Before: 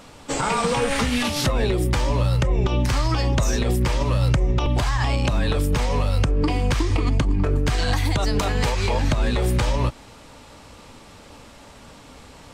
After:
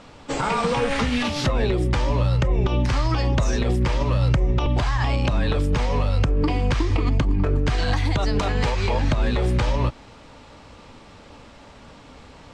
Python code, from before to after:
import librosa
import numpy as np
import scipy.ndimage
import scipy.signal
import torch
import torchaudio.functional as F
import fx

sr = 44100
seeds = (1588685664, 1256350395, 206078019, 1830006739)

y = fx.air_absorb(x, sr, metres=85.0)